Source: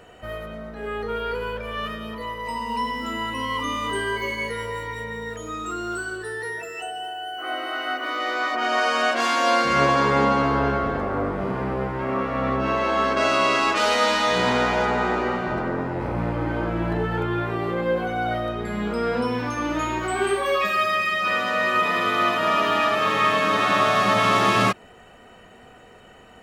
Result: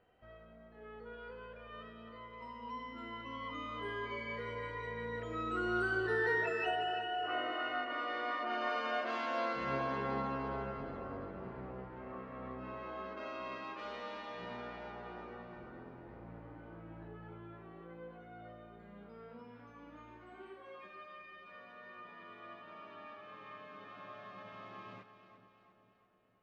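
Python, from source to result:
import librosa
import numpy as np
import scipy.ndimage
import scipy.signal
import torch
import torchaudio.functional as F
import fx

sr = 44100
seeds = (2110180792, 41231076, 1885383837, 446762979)

y = fx.doppler_pass(x, sr, speed_mps=9, closest_m=4.6, pass_at_s=6.35)
y = fx.air_absorb(y, sr, metres=220.0)
y = fx.echo_split(y, sr, split_hz=620.0, low_ms=453, high_ms=346, feedback_pct=52, wet_db=-11)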